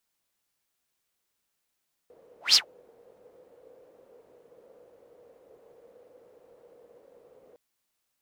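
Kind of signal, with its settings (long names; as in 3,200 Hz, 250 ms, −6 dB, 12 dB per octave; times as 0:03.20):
pass-by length 5.46 s, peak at 0:00.45, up 0.16 s, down 0.11 s, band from 490 Hz, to 5,200 Hz, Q 8.8, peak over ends 39.5 dB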